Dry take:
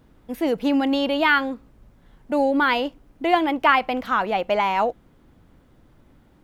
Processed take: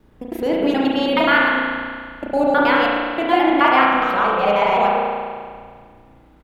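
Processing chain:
reversed piece by piece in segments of 106 ms
echo with shifted repeats 98 ms, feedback 57%, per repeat −31 Hz, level −21.5 dB
spring reverb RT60 1.9 s, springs 34 ms, chirp 40 ms, DRR −3.5 dB

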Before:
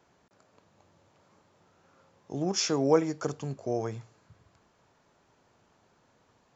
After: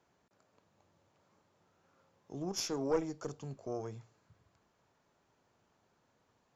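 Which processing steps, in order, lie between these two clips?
dynamic equaliser 1,800 Hz, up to −5 dB, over −48 dBFS, Q 1
tube saturation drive 15 dB, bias 0.75
level −3.5 dB

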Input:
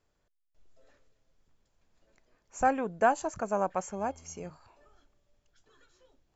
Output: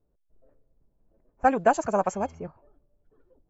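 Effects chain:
low-pass that shuts in the quiet parts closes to 510 Hz, open at −27.5 dBFS
phase-vocoder stretch with locked phases 0.55×
level +6.5 dB

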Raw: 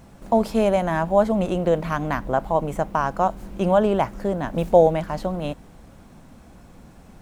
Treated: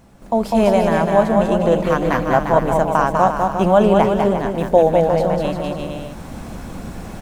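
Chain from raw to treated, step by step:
mains-hum notches 50/100/150 Hz
bouncing-ball delay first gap 200 ms, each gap 0.75×, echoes 5
automatic gain control gain up to 15 dB
level −1 dB

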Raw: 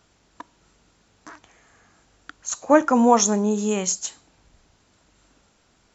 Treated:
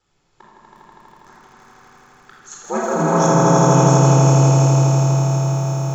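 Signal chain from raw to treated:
ring modulation 72 Hz
echo that builds up and dies away 81 ms, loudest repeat 5, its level −3.5 dB
rectangular room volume 1,800 cubic metres, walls mixed, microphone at 4.1 metres
feedback echo at a low word length 354 ms, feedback 80%, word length 6 bits, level −11 dB
level −8.5 dB

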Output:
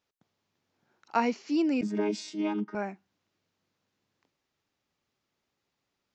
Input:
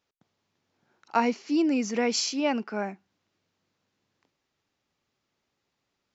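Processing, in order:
0:01.81–0:02.75: channel vocoder with a chord as carrier bare fifth, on G#3
level −2.5 dB

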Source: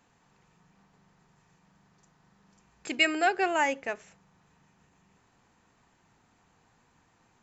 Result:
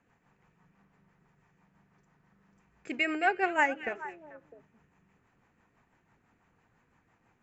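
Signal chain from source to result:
rotating-speaker cabinet horn 6 Hz
0:03.40–0:03.89: transient designer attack +11 dB, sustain −2 dB
high shelf with overshoot 2,900 Hz −8 dB, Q 1.5
echo through a band-pass that steps 218 ms, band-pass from 3,000 Hz, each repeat −1.4 octaves, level −9 dB
level −1 dB

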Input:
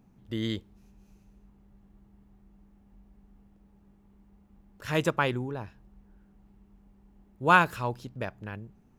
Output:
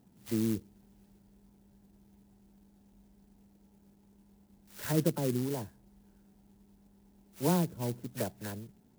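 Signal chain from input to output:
every frequency bin delayed by itself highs early, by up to 144 ms
dynamic equaliser 200 Hz, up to +4 dB, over −41 dBFS, Q 0.82
treble cut that deepens with the level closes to 430 Hz, closed at −24.5 dBFS
notch comb filter 1,200 Hz
converter with an unsteady clock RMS 0.099 ms

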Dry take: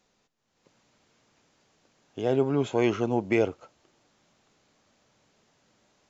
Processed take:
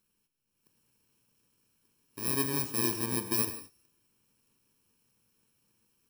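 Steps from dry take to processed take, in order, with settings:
samples in bit-reversed order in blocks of 64 samples
reverb whose tail is shaped and stops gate 200 ms flat, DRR 9.5 dB
level −6.5 dB

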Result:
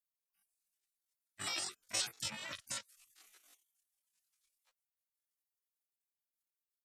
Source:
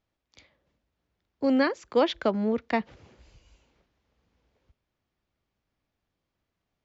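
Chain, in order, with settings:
gate on every frequency bin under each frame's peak −30 dB weak
multi-voice chorus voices 4, 1.1 Hz, delay 13 ms, depth 4 ms
pitch shifter +10 semitones
level +11.5 dB

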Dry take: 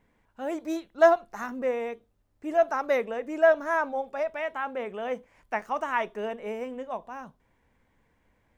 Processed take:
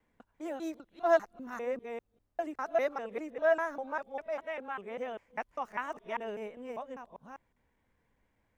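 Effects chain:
reversed piece by piece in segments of 199 ms
level −7 dB

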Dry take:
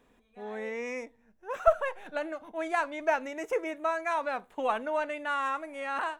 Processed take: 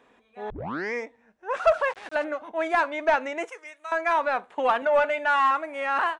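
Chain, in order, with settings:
high-pass filter 47 Hz
0:00.50: tape start 0.44 s
0:01.56–0:02.25: centre clipping without the shift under −46.5 dBFS
0:03.50–0:03.92: first difference
0:04.82–0:05.51: comb filter 4.7 ms, depth 78%
mid-hump overdrive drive 16 dB, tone 2,300 Hz, clips at −9 dBFS
downsampling to 22,050 Hz
wow of a warped record 45 rpm, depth 100 cents

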